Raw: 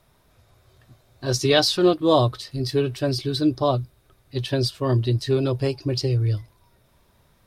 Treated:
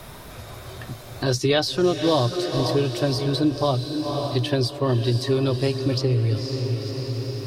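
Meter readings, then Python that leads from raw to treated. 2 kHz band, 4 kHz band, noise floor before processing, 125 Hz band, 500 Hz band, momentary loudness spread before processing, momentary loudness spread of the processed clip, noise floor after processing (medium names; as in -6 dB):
0.0 dB, -0.5 dB, -61 dBFS, +1.0 dB, 0.0 dB, 11 LU, 16 LU, -40 dBFS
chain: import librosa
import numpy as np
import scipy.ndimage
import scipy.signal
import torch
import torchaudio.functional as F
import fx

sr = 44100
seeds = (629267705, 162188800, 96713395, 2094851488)

y = fx.echo_diffused(x, sr, ms=518, feedback_pct=48, wet_db=-10)
y = fx.band_squash(y, sr, depth_pct=70)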